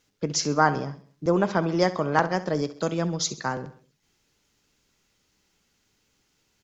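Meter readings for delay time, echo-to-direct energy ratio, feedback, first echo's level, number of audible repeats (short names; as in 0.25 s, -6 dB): 66 ms, -14.5 dB, 48%, -15.5 dB, 4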